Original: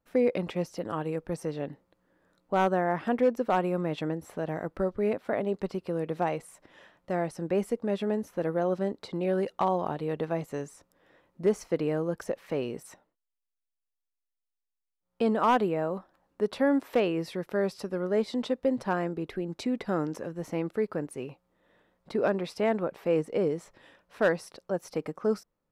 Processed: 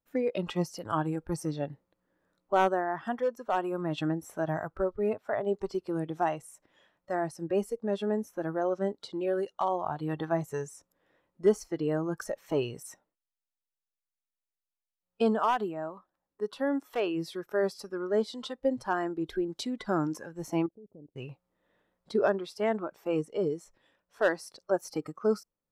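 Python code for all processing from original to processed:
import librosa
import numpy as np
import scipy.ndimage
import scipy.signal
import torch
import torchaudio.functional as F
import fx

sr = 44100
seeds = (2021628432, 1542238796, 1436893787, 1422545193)

y = fx.chain(x, sr, fx.gaussian_blur(sigma=16.0),
    fx.level_steps(step_db=21), at=(20.66, 21.16))
y = fx.noise_reduce_blind(y, sr, reduce_db=12)
y = fx.rider(y, sr, range_db=5, speed_s=0.5)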